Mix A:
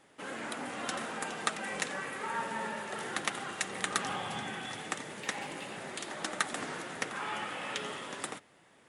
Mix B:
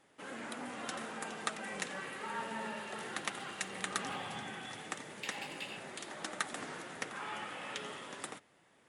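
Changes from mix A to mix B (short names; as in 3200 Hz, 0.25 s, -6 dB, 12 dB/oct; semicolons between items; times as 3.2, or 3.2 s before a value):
first sound -5.0 dB; second sound +4.5 dB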